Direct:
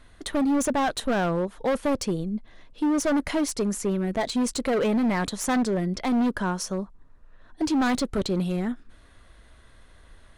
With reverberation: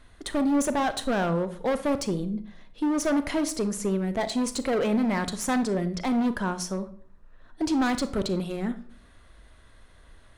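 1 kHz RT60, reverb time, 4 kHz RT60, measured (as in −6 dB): 0.50 s, 0.50 s, 0.35 s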